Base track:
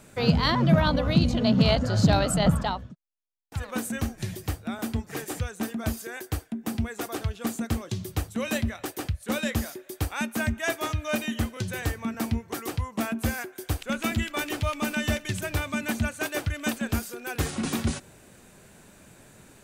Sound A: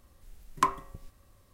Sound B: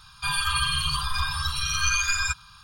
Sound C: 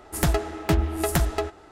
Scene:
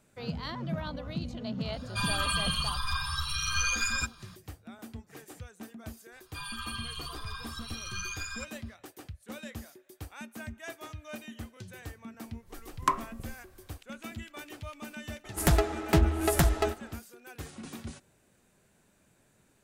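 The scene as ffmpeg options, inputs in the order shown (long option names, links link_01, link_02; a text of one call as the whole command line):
ffmpeg -i bed.wav -i cue0.wav -i cue1.wav -i cue2.wav -filter_complex "[2:a]asplit=2[link_01][link_02];[0:a]volume=-14.5dB[link_03];[link_01]acontrast=50[link_04];[1:a]dynaudnorm=framelen=170:gausssize=3:maxgain=11.5dB[link_05];[link_04]atrim=end=2.63,asetpts=PTS-STARTPTS,volume=-11dB,afade=type=in:duration=0.004:curve=hsin,afade=type=out:start_time=2.626:duration=0.004:curve=hsin,adelay=1730[link_06];[link_02]atrim=end=2.63,asetpts=PTS-STARTPTS,volume=-14dB,afade=type=in:duration=0.004:curve=hsin,afade=type=out:start_time=2.626:duration=0.004:curve=hsin,adelay=6120[link_07];[link_05]atrim=end=1.53,asetpts=PTS-STARTPTS,volume=-9.5dB,afade=type=in:duration=0.004:curve=hsin,afade=type=out:start_time=1.526:duration=0.004:curve=hsin,adelay=12250[link_08];[3:a]atrim=end=1.71,asetpts=PTS-STARTPTS,volume=-1.5dB,afade=type=in:duration=0.004:curve=hsin,afade=type=out:start_time=1.706:duration=0.004:curve=hsin,adelay=672084S[link_09];[link_03][link_06][link_07][link_08][link_09]amix=inputs=5:normalize=0" out.wav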